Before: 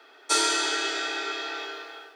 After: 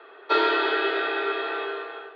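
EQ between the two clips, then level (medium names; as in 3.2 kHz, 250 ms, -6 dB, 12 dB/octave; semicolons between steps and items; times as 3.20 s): distance through air 400 m; cabinet simulation 290–4300 Hz, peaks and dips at 390 Hz +10 dB, 660 Hz +4 dB, 1.1 kHz +10 dB, 1.7 kHz +5 dB, 2.8 kHz +5 dB, 4 kHz +7 dB; peaking EQ 500 Hz +6.5 dB 0.27 oct; +2.5 dB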